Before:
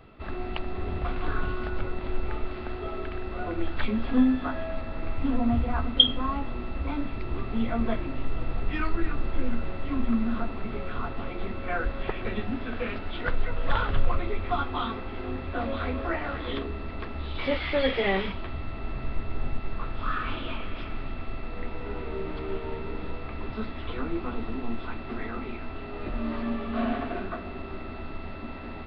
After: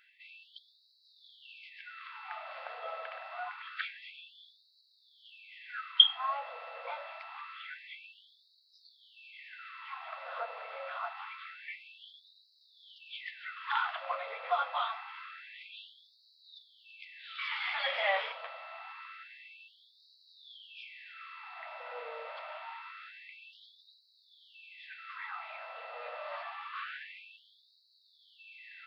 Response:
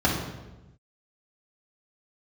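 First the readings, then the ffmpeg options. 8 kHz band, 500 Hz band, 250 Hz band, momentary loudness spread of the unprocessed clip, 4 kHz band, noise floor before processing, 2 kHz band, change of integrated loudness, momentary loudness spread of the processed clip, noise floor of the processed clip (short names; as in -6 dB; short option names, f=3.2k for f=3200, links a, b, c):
n/a, -12.0 dB, under -40 dB, 11 LU, -2.0 dB, -37 dBFS, -4.0 dB, -5.0 dB, 20 LU, -68 dBFS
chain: -af "equalizer=f=4k:t=o:w=0.24:g=-3,afftfilt=real='re*gte(b*sr/1024,450*pow(3800/450,0.5+0.5*sin(2*PI*0.26*pts/sr)))':imag='im*gte(b*sr/1024,450*pow(3800/450,0.5+0.5*sin(2*PI*0.26*pts/sr)))':win_size=1024:overlap=0.75,volume=-1.5dB"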